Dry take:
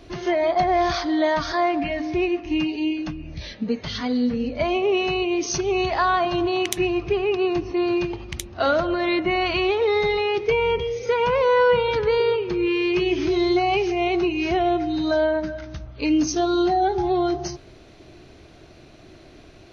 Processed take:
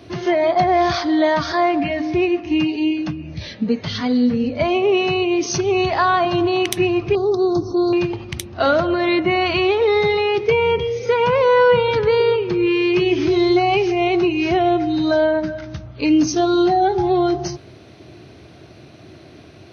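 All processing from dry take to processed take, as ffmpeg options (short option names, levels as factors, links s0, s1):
-filter_complex "[0:a]asettb=1/sr,asplit=3[s0][s1][s2];[s0]atrim=end=7.154[s3];[s1]atrim=start=7.15:end=7.93,asetpts=PTS-STARTPTS,afade=t=in:d=0.004:c=qsin,afade=t=out:st=0.776:d=0.004:c=qsin,asuperstop=centerf=2300:order=12:qfactor=0.99,equalizer=f=11000:w=0.55:g=9.5[s4];[s2]atrim=start=7.926[s5];[s3][s4]acrossfade=d=0.004:c1=hsin:c2=qsin[s6];[s6][s5]acrossfade=d=0.004:c1=qsin:c2=hsin,highpass=f=93:w=0.5412,highpass=f=93:w=1.3066,lowshelf=f=130:g=9,bandreject=f=7000:w=5.4,volume=1.5"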